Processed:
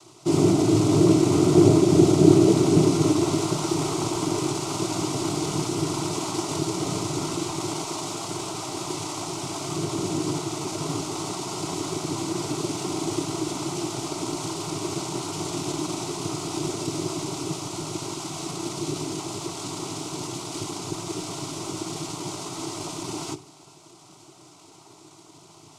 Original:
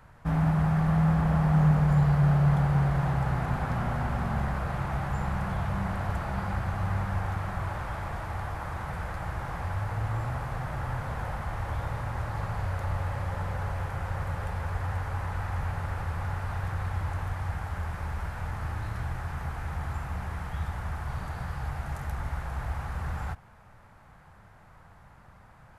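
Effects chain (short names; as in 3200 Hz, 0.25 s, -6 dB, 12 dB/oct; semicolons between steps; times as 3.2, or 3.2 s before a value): resonant high shelf 1900 Hz +10 dB, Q 1.5; noise vocoder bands 3; fixed phaser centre 340 Hz, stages 8; on a send: reverb RT60 0.40 s, pre-delay 3 ms, DRR 10 dB; on the sum: gain +7.5 dB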